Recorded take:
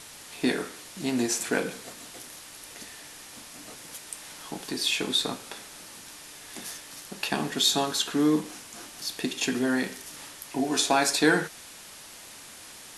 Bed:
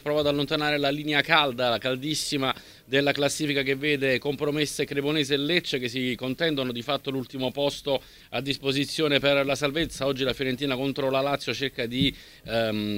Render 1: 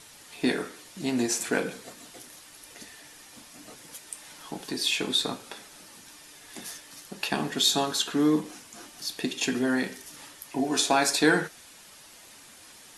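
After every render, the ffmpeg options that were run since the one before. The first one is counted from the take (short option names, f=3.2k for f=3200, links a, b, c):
-af "afftdn=nr=6:nf=-46"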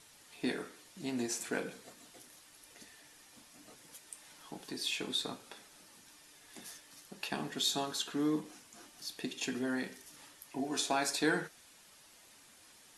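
-af "volume=-9.5dB"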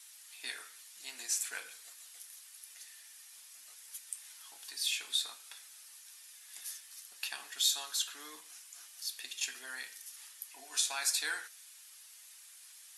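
-af "highpass=1.5k,highshelf=f=7k:g=11"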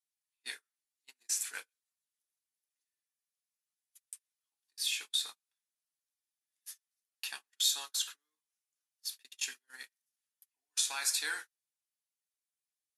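-af "equalizer=f=660:w=6.6:g=-8,agate=range=-40dB:threshold=-41dB:ratio=16:detection=peak"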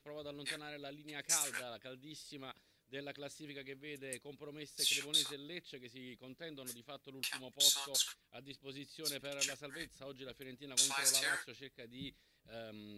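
-filter_complex "[1:a]volume=-24dB[a];[0:a][a]amix=inputs=2:normalize=0"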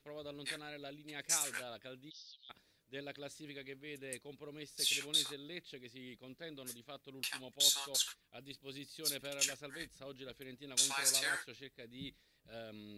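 -filter_complex "[0:a]asplit=3[a][b][c];[a]afade=t=out:st=2.09:d=0.02[d];[b]asuperpass=centerf=4300:order=12:qfactor=1.5,afade=t=in:st=2.09:d=0.02,afade=t=out:st=2.49:d=0.02[e];[c]afade=t=in:st=2.49:d=0.02[f];[d][e][f]amix=inputs=3:normalize=0,asettb=1/sr,asplit=3[g][h][i];[g]atrim=end=8.404[j];[h]atrim=start=8.4:end=9.5,asetpts=PTS-STARTPTS,afade=t=in:d=0.004:c=qsin,afade=t=out:st=1.096:d=0.004:c=qsin,highshelf=f=6.4k:g=6.5[k];[i]atrim=start=9.496[l];[j][k]acrossfade=d=0.004:c1=hsin:c2=qsin[m];[m][l]acrossfade=d=0.004:c1=qsin:c2=hsin"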